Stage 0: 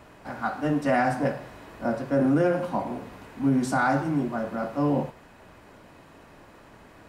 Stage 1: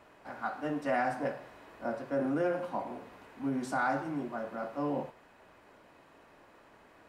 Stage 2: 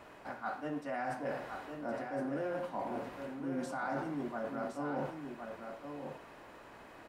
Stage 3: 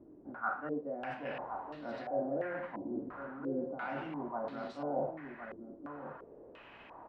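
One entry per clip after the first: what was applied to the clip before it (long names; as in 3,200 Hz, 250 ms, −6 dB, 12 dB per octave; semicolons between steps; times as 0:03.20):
bass and treble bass −9 dB, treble −4 dB; level −6.5 dB
reversed playback; downward compressor 6 to 1, threshold −40 dBFS, peak gain reduction 13.5 dB; reversed playback; single-tap delay 1,065 ms −6.5 dB; level +4.5 dB
low-pass on a step sequencer 2.9 Hz 320–4,000 Hz; level −3.5 dB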